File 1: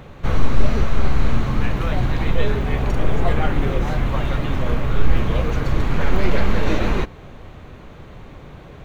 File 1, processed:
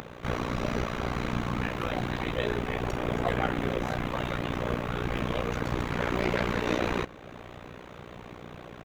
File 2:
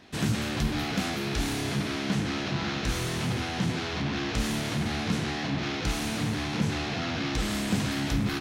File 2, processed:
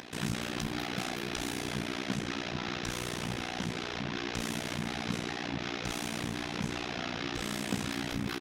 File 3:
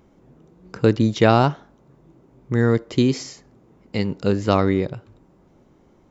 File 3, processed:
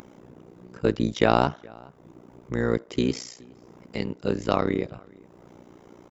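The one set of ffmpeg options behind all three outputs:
ffmpeg -i in.wav -filter_complex "[0:a]highpass=frequency=200:poles=1,bandreject=frequency=4300:width=20,acompressor=mode=upward:threshold=-34dB:ratio=2.5,tremolo=f=60:d=0.947,asplit=2[link_01][link_02];[link_02]adelay=419.8,volume=-25dB,highshelf=frequency=4000:gain=-9.45[link_03];[link_01][link_03]amix=inputs=2:normalize=0" out.wav

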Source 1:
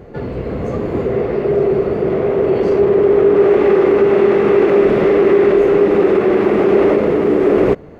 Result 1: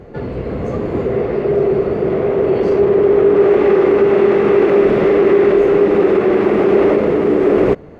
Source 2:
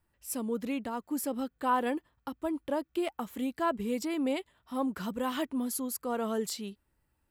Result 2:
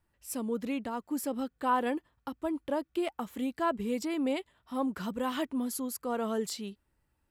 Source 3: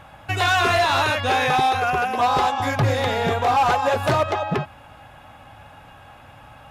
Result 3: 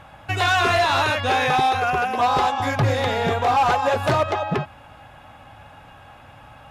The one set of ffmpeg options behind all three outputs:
ffmpeg -i in.wav -af "highshelf=frequency=12000:gain=-6.5" out.wav

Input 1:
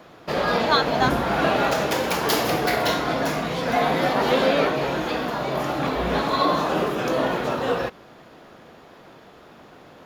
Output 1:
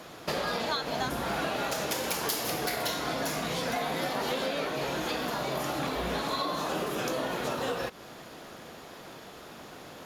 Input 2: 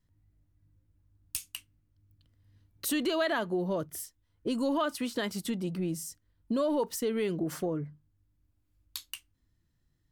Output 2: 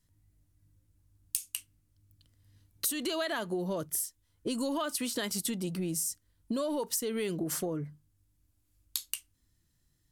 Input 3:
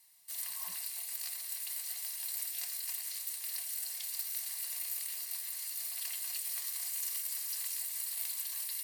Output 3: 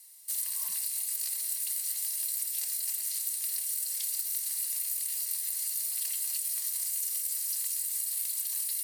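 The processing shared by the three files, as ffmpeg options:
ffmpeg -i in.wav -af "equalizer=frequency=10000:width=0.41:gain=12.5,acompressor=threshold=-29dB:ratio=6" out.wav

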